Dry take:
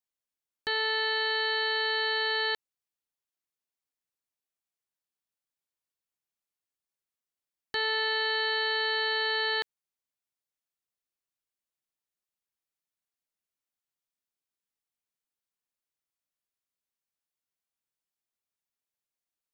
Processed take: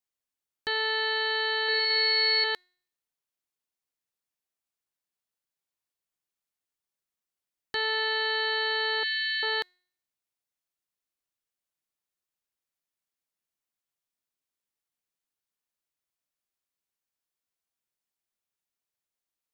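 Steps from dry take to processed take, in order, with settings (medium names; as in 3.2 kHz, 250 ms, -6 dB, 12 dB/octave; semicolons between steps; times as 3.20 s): 9.03–9.43 s: brick-wall FIR band-stop 210–1700 Hz; feedback comb 360 Hz, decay 0.58 s, mix 40%; 1.63–2.44 s: flutter echo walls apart 9.3 m, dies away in 1.5 s; trim +5 dB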